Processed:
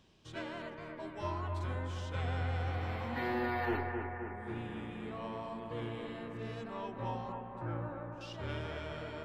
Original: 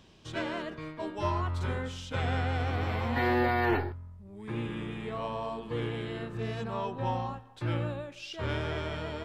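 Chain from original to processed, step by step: 7.32–8.21 resonant high shelf 2100 Hz -13.5 dB, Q 1.5; analogue delay 0.262 s, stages 4096, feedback 67%, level -5.5 dB; gain -8 dB

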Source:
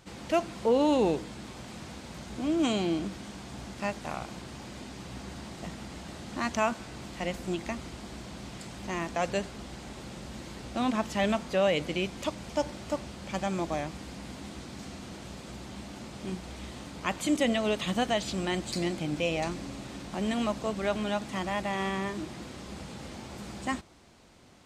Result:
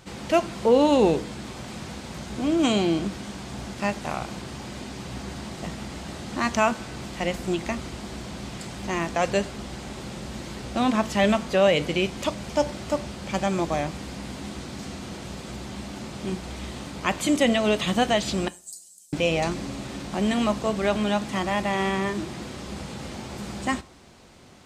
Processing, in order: 18.48–19.13 inverse Chebyshev high-pass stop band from 1400 Hz, stop band 80 dB; two-slope reverb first 0.29 s, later 1.5 s, from -27 dB, DRR 14 dB; gain +6 dB

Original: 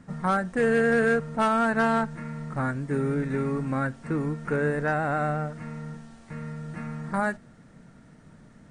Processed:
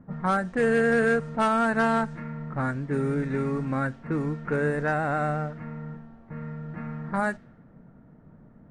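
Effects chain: low-pass opened by the level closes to 910 Hz, open at -21 dBFS

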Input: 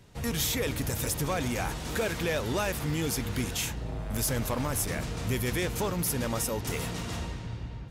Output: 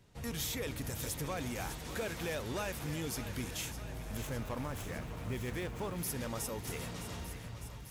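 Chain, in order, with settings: 4.17–5.96 median filter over 9 samples; on a send: thinning echo 0.607 s, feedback 72%, high-pass 440 Hz, level -11 dB; on the sum: gain -8.5 dB

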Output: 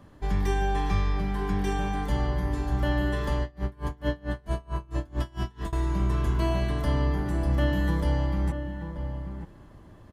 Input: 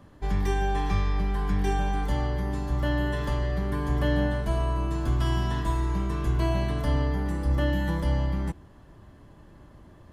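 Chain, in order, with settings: outdoor echo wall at 160 m, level -8 dB; 3.42–5.73 dB-linear tremolo 4.5 Hz, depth 29 dB

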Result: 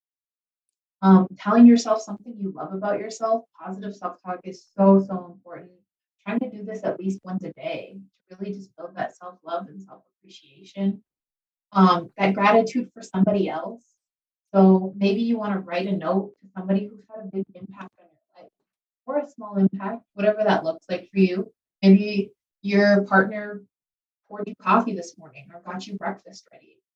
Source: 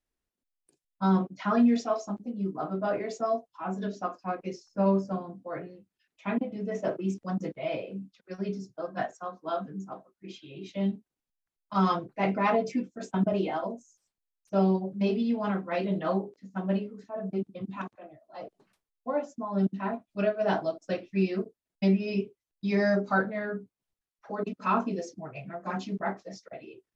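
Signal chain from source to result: three-band expander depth 100%; gain +4.5 dB

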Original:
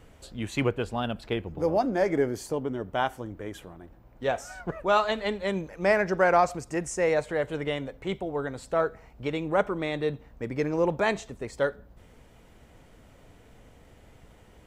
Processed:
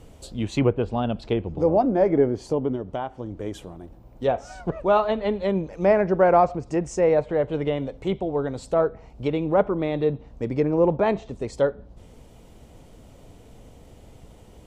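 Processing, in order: treble ducked by the level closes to 2100 Hz, closed at -24.5 dBFS; bell 1700 Hz -10.5 dB 1.2 oct; 2.75–3.4 compressor 3:1, threshold -34 dBFS, peak gain reduction 8 dB; gain +6.5 dB

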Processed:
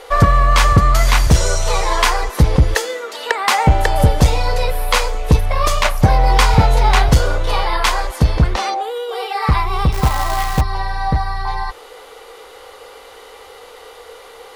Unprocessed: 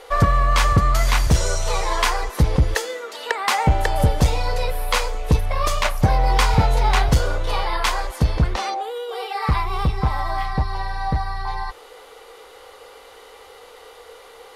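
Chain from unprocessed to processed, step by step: 9.92–10.61 companded quantiser 4-bit; gain +5 dB

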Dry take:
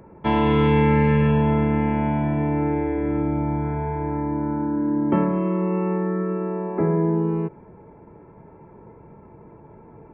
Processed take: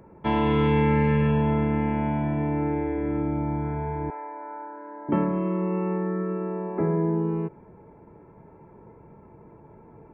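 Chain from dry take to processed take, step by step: 4.1–5.09 HPF 540 Hz 24 dB/oct; gain -3.5 dB

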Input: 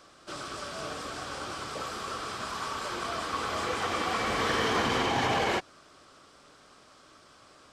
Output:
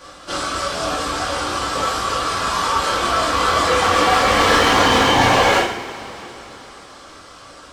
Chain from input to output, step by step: reverb removal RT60 0.77 s; overloaded stage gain 27 dB; two-slope reverb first 0.58 s, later 3.6 s, from -18 dB, DRR -7.5 dB; gain +9 dB

